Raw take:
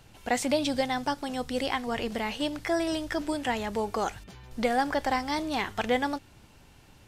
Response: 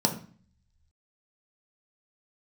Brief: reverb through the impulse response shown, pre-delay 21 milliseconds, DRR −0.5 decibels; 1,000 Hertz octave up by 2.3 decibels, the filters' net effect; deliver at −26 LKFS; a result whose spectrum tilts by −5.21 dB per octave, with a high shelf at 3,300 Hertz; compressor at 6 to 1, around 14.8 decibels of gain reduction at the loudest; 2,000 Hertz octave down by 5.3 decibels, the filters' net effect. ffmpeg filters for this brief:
-filter_complex "[0:a]equalizer=frequency=1000:width_type=o:gain=4.5,equalizer=frequency=2000:width_type=o:gain=-9,highshelf=frequency=3300:gain=4,acompressor=threshold=-37dB:ratio=6,asplit=2[link_01][link_02];[1:a]atrim=start_sample=2205,adelay=21[link_03];[link_02][link_03]afir=irnorm=-1:irlink=0,volume=-10dB[link_04];[link_01][link_04]amix=inputs=2:normalize=0,volume=7.5dB"

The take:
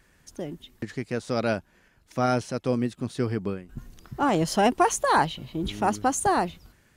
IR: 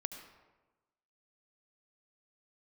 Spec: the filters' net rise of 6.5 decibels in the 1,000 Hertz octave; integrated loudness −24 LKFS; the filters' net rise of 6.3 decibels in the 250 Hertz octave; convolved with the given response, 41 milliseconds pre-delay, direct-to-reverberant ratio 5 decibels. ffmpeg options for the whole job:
-filter_complex "[0:a]equalizer=frequency=250:width_type=o:gain=7,equalizer=frequency=1000:width_type=o:gain=8,asplit=2[link_01][link_02];[1:a]atrim=start_sample=2205,adelay=41[link_03];[link_02][link_03]afir=irnorm=-1:irlink=0,volume=-4dB[link_04];[link_01][link_04]amix=inputs=2:normalize=0,volume=-4.5dB"

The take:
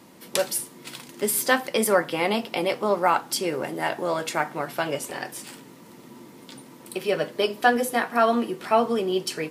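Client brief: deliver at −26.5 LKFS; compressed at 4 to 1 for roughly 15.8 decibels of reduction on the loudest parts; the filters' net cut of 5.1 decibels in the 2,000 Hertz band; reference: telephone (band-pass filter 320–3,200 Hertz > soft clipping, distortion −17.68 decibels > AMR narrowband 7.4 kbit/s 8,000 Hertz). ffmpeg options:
ffmpeg -i in.wav -af "equalizer=frequency=2000:width_type=o:gain=-6,acompressor=threshold=-35dB:ratio=4,highpass=320,lowpass=3200,asoftclip=threshold=-28.5dB,volume=15.5dB" -ar 8000 -c:a libopencore_amrnb -b:a 7400 out.amr

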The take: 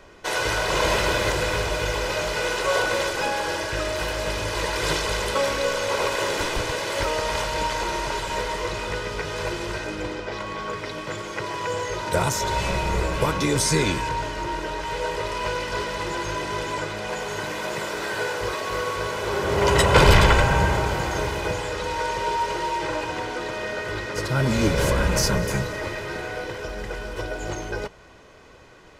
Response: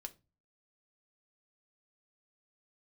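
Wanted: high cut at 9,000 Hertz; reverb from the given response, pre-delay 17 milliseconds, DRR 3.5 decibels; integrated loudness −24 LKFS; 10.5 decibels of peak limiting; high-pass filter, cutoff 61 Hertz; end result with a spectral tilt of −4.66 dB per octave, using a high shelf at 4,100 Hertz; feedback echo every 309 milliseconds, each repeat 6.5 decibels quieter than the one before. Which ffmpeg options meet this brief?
-filter_complex "[0:a]highpass=61,lowpass=9000,highshelf=frequency=4100:gain=-7,alimiter=limit=-13.5dB:level=0:latency=1,aecho=1:1:309|618|927|1236|1545|1854:0.473|0.222|0.105|0.0491|0.0231|0.0109,asplit=2[link_01][link_02];[1:a]atrim=start_sample=2205,adelay=17[link_03];[link_02][link_03]afir=irnorm=-1:irlink=0,volume=1dB[link_04];[link_01][link_04]amix=inputs=2:normalize=0"

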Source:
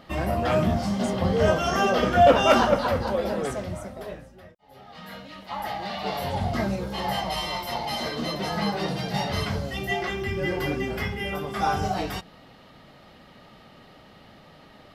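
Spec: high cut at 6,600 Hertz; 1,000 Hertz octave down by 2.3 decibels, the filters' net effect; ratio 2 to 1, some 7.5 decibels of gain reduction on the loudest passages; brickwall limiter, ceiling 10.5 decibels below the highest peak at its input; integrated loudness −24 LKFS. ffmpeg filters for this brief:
ffmpeg -i in.wav -af "lowpass=6600,equalizer=frequency=1000:width_type=o:gain=-3.5,acompressor=threshold=-27dB:ratio=2,volume=10dB,alimiter=limit=-15dB:level=0:latency=1" out.wav

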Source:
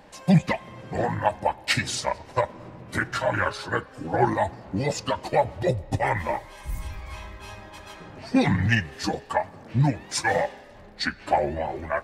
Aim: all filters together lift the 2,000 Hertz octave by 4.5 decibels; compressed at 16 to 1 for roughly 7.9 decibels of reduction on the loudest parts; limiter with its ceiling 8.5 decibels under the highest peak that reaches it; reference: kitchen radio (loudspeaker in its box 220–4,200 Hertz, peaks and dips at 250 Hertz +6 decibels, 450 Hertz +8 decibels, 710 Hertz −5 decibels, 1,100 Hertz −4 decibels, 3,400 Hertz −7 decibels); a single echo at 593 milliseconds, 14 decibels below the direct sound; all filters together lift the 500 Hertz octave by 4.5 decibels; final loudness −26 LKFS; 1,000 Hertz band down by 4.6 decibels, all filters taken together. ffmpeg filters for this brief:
ffmpeg -i in.wav -af "equalizer=frequency=500:width_type=o:gain=4,equalizer=frequency=1000:width_type=o:gain=-5.5,equalizer=frequency=2000:width_type=o:gain=7.5,acompressor=threshold=-21dB:ratio=16,alimiter=limit=-18.5dB:level=0:latency=1,highpass=220,equalizer=frequency=250:width_type=q:width=4:gain=6,equalizer=frequency=450:width_type=q:width=4:gain=8,equalizer=frequency=710:width_type=q:width=4:gain=-5,equalizer=frequency=1100:width_type=q:width=4:gain=-4,equalizer=frequency=3400:width_type=q:width=4:gain=-7,lowpass=frequency=4200:width=0.5412,lowpass=frequency=4200:width=1.3066,aecho=1:1:593:0.2,volume=5.5dB" out.wav

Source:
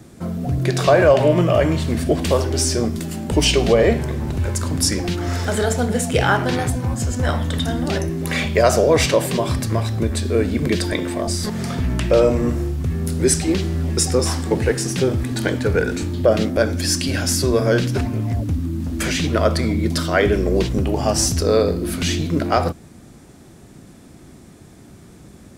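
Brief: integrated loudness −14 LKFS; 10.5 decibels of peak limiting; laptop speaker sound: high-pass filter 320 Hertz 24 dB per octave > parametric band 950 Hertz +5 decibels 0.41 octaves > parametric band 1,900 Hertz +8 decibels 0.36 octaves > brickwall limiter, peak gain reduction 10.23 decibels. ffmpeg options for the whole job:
ffmpeg -i in.wav -af "alimiter=limit=-12.5dB:level=0:latency=1,highpass=frequency=320:width=0.5412,highpass=frequency=320:width=1.3066,equalizer=frequency=950:width_type=o:width=0.41:gain=5,equalizer=frequency=1900:width_type=o:width=0.36:gain=8,volume=14dB,alimiter=limit=-4.5dB:level=0:latency=1" out.wav

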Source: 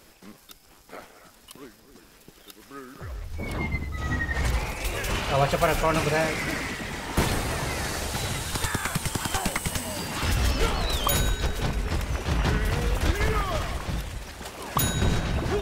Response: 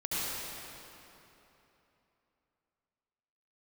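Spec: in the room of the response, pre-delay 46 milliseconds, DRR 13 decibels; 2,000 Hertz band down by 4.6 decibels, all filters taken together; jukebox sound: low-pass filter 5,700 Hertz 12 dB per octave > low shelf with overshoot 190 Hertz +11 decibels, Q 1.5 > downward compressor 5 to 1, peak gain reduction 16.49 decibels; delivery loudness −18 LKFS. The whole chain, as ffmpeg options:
-filter_complex "[0:a]equalizer=frequency=2000:width_type=o:gain=-5.5,asplit=2[link_01][link_02];[1:a]atrim=start_sample=2205,adelay=46[link_03];[link_02][link_03]afir=irnorm=-1:irlink=0,volume=-20.5dB[link_04];[link_01][link_04]amix=inputs=2:normalize=0,lowpass=5700,lowshelf=frequency=190:width_type=q:width=1.5:gain=11,acompressor=threshold=-24dB:ratio=5,volume=11.5dB"

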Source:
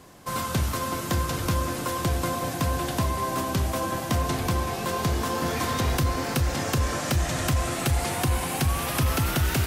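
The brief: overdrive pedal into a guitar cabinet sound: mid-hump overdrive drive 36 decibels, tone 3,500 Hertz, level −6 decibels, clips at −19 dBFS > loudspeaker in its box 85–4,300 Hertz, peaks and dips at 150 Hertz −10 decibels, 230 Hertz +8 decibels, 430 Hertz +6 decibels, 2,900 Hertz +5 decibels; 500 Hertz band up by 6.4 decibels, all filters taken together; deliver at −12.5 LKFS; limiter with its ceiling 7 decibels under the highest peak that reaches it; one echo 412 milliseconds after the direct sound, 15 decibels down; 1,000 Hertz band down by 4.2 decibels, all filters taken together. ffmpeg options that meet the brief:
ffmpeg -i in.wav -filter_complex "[0:a]equalizer=frequency=500:width_type=o:gain=6.5,equalizer=frequency=1000:width_type=o:gain=-7.5,alimiter=limit=-20.5dB:level=0:latency=1,aecho=1:1:412:0.178,asplit=2[link_01][link_02];[link_02]highpass=frequency=720:poles=1,volume=36dB,asoftclip=type=tanh:threshold=-19dB[link_03];[link_01][link_03]amix=inputs=2:normalize=0,lowpass=frequency=3500:poles=1,volume=-6dB,highpass=85,equalizer=frequency=150:width_type=q:width=4:gain=-10,equalizer=frequency=230:width_type=q:width=4:gain=8,equalizer=frequency=430:width_type=q:width=4:gain=6,equalizer=frequency=2900:width_type=q:width=4:gain=5,lowpass=frequency=4300:width=0.5412,lowpass=frequency=4300:width=1.3066,volume=12dB" out.wav

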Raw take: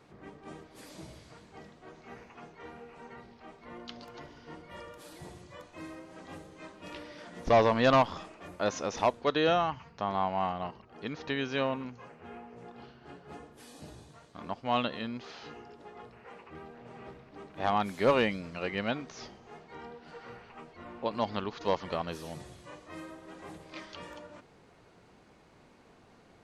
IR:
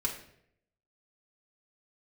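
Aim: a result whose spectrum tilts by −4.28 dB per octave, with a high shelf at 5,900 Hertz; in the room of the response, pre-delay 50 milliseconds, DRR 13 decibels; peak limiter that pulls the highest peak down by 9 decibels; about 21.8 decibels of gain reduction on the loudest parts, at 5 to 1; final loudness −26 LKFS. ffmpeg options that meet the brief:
-filter_complex "[0:a]highshelf=frequency=5900:gain=7,acompressor=threshold=-45dB:ratio=5,alimiter=level_in=14dB:limit=-24dB:level=0:latency=1,volume=-14dB,asplit=2[link_01][link_02];[1:a]atrim=start_sample=2205,adelay=50[link_03];[link_02][link_03]afir=irnorm=-1:irlink=0,volume=-17.5dB[link_04];[link_01][link_04]amix=inputs=2:normalize=0,volume=24dB"

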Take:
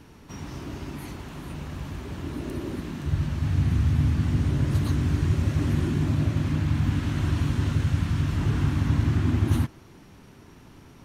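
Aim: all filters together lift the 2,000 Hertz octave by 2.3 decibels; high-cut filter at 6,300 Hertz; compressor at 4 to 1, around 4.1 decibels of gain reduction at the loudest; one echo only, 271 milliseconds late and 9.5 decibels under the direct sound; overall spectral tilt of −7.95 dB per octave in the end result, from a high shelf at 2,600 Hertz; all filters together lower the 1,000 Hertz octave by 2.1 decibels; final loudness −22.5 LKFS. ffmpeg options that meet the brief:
ffmpeg -i in.wav -af "lowpass=6300,equalizer=frequency=1000:width_type=o:gain=-3.5,equalizer=frequency=2000:width_type=o:gain=7,highshelf=frequency=2600:gain=-7,acompressor=threshold=-23dB:ratio=4,aecho=1:1:271:0.335,volume=6.5dB" out.wav

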